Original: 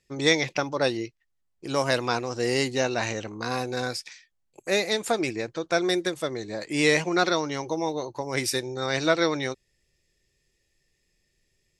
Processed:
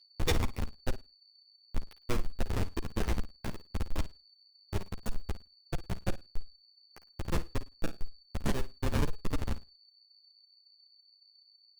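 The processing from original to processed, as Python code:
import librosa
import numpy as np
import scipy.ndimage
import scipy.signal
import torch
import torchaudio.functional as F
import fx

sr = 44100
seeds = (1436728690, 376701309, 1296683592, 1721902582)

y = scipy.signal.sosfilt(scipy.signal.ellip(3, 1.0, 80, [610.0, 1600.0], 'bandstop', fs=sr, output='sos'), x)
y = fx.high_shelf(y, sr, hz=2100.0, db=5.5)
y = fx.level_steps(y, sr, step_db=16)
y = fx.schmitt(y, sr, flips_db=-23.5)
y = y + 10.0 ** (-71.0 / 20.0) * np.sin(2.0 * np.pi * 4500.0 * np.arange(len(y)) / sr)
y = fx.fold_sine(y, sr, drive_db=5, ceiling_db=-28.5)
y = fx.room_flutter(y, sr, wall_m=9.2, rt60_s=0.23)
y = fx.ensemble(y, sr)
y = F.gain(torch.from_numpy(y), 7.0).numpy()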